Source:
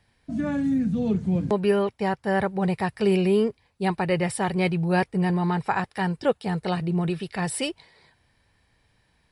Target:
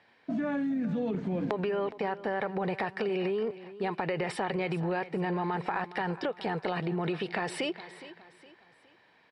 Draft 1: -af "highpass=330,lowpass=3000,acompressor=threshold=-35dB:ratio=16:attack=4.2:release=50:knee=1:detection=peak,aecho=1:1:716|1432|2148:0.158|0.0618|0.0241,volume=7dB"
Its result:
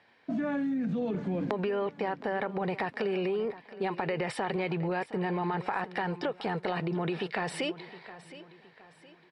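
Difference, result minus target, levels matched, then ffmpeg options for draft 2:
echo 302 ms late
-af "highpass=330,lowpass=3000,acompressor=threshold=-35dB:ratio=16:attack=4.2:release=50:knee=1:detection=peak,aecho=1:1:414|828|1242:0.158|0.0618|0.0241,volume=7dB"

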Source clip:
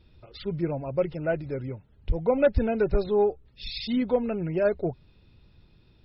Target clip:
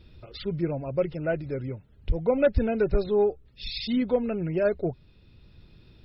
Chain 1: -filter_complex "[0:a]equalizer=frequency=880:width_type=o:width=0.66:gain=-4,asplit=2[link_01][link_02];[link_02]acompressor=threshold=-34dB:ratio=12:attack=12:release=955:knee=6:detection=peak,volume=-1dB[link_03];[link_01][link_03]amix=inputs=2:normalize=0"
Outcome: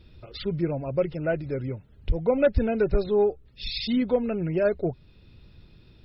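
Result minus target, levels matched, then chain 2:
downward compressor: peak gain reduction −11 dB
-filter_complex "[0:a]equalizer=frequency=880:width_type=o:width=0.66:gain=-4,asplit=2[link_01][link_02];[link_02]acompressor=threshold=-46dB:ratio=12:attack=12:release=955:knee=6:detection=peak,volume=-1dB[link_03];[link_01][link_03]amix=inputs=2:normalize=0"

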